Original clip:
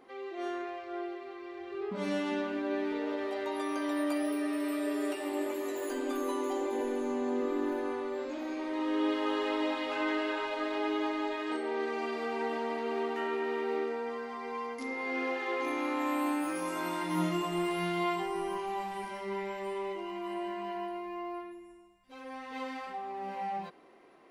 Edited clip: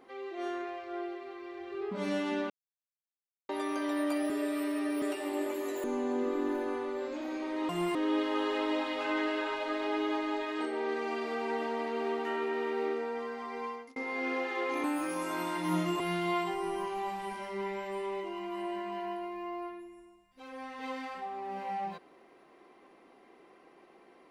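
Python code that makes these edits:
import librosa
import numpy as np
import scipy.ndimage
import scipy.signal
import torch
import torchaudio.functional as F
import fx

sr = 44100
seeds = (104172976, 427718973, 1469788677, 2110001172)

y = fx.edit(x, sr, fx.silence(start_s=2.5, length_s=0.99),
    fx.reverse_span(start_s=4.3, length_s=0.72),
    fx.cut(start_s=5.84, length_s=1.17),
    fx.fade_out_span(start_s=14.56, length_s=0.31),
    fx.cut(start_s=15.75, length_s=0.55),
    fx.move(start_s=17.46, length_s=0.26, to_s=8.86), tone=tone)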